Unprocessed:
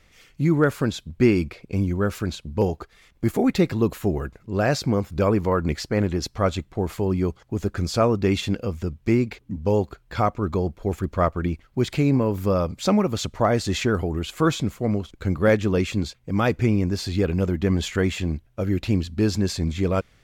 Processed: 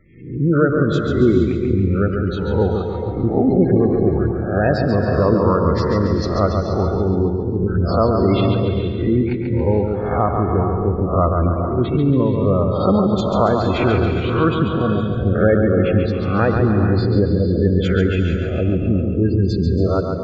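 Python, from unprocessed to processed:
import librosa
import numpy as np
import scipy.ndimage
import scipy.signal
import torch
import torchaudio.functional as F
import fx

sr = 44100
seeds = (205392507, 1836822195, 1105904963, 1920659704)

p1 = fx.spec_swells(x, sr, rise_s=0.62)
p2 = fx.quant_dither(p1, sr, seeds[0], bits=6, dither='none')
p3 = p1 + (p2 * 10.0 ** (-11.0 / 20.0))
p4 = fx.lowpass(p3, sr, hz=3000.0, slope=6)
p5 = fx.peak_eq(p4, sr, hz=79.0, db=4.5, octaves=0.43)
p6 = fx.spec_gate(p5, sr, threshold_db=-20, keep='strong')
p7 = p6 + fx.echo_feedback(p6, sr, ms=139, feedback_pct=52, wet_db=-5.5, dry=0)
y = fx.rev_gated(p7, sr, seeds[1], gate_ms=500, shape='rising', drr_db=6.0)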